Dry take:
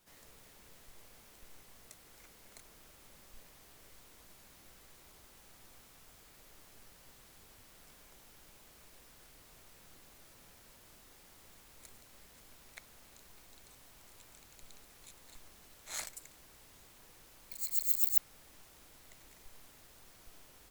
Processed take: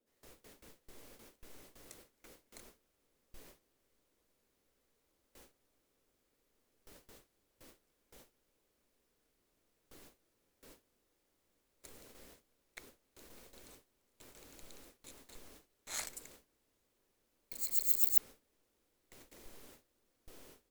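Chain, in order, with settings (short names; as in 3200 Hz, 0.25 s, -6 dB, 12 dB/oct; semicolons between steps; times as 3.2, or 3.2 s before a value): band noise 220–570 Hz -64 dBFS; gate with hold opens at -45 dBFS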